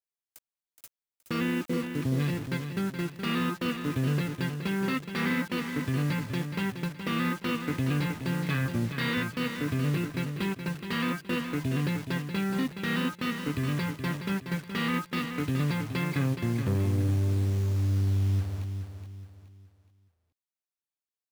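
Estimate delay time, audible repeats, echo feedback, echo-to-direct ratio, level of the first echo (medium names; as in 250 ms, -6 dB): 421 ms, 3, 35%, -7.5 dB, -8.0 dB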